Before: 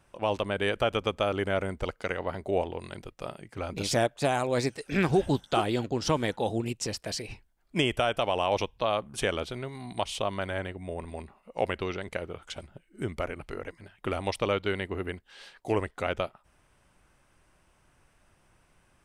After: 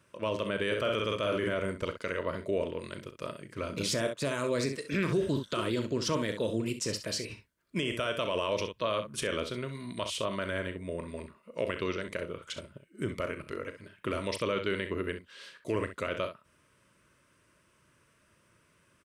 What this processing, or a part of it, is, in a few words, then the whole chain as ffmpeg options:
PA system with an anti-feedback notch: -filter_complex "[0:a]asplit=3[s0][s1][s2];[s0]afade=t=out:st=0.7:d=0.02[s3];[s1]asplit=2[s4][s5];[s5]adelay=48,volume=0.562[s6];[s4][s6]amix=inputs=2:normalize=0,afade=t=in:st=0.7:d=0.02,afade=t=out:st=1.53:d=0.02[s7];[s2]afade=t=in:st=1.53:d=0.02[s8];[s3][s7][s8]amix=inputs=3:normalize=0,highpass=100,asuperstop=centerf=780:order=4:qfactor=2.6,aecho=1:1:36|65:0.237|0.266,alimiter=limit=0.0944:level=0:latency=1:release=31"

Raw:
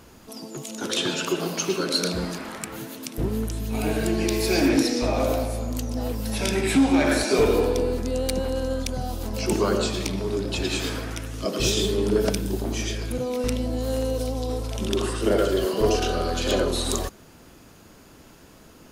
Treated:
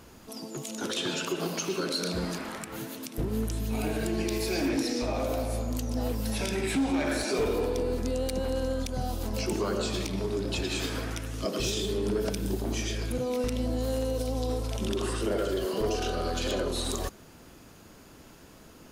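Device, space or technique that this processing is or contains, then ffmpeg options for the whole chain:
limiter into clipper: -af "alimiter=limit=0.119:level=0:latency=1:release=116,asoftclip=type=hard:threshold=0.1,volume=0.794"

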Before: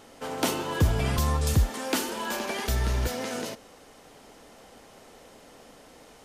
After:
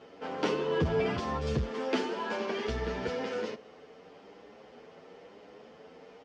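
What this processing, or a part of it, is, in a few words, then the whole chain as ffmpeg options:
barber-pole flanger into a guitar amplifier: -filter_complex "[0:a]asplit=2[s0][s1];[s1]adelay=8.6,afreqshift=1[s2];[s0][s2]amix=inputs=2:normalize=1,asoftclip=type=tanh:threshold=0.126,highpass=92,equalizer=f=110:t=q:w=4:g=-5,equalizer=f=180:t=q:w=4:g=4,equalizer=f=440:t=q:w=4:g=9,equalizer=f=3900:t=q:w=4:g=-6,lowpass=f=4600:w=0.5412,lowpass=f=4600:w=1.3066"

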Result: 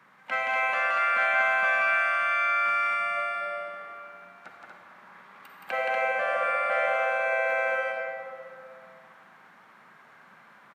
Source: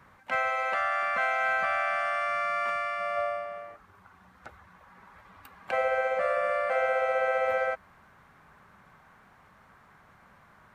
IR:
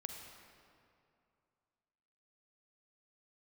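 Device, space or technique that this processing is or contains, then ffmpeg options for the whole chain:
stadium PA: -filter_complex "[0:a]highpass=f=160:w=0.5412,highpass=f=160:w=1.3066,equalizer=f=2400:t=o:w=2.2:g=5.5,aecho=1:1:172|239.1:0.708|0.631[s0];[1:a]atrim=start_sample=2205[s1];[s0][s1]afir=irnorm=-1:irlink=0"

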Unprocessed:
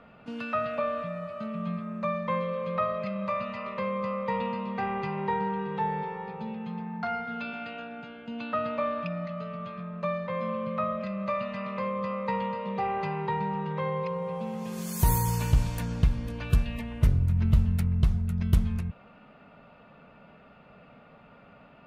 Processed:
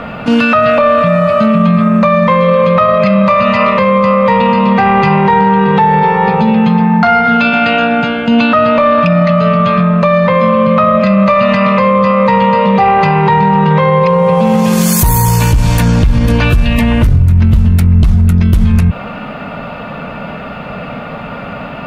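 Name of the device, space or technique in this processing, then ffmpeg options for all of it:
mastering chain: -af "equalizer=f=390:t=o:w=0.37:g=-4,acompressor=threshold=0.0398:ratio=2.5,asoftclip=type=tanh:threshold=0.0944,alimiter=level_in=35.5:limit=0.891:release=50:level=0:latency=1,volume=0.891"

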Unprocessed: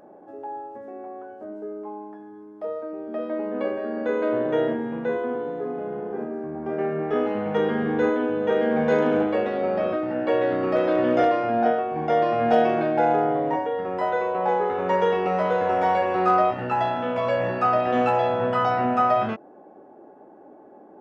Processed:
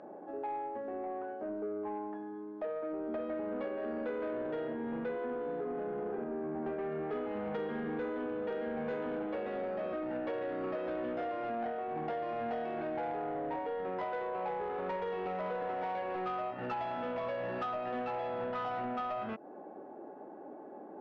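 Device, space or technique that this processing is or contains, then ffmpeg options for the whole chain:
AM radio: -af "highpass=140,lowpass=3600,acompressor=threshold=0.0251:ratio=8,asoftclip=type=tanh:threshold=0.0316"

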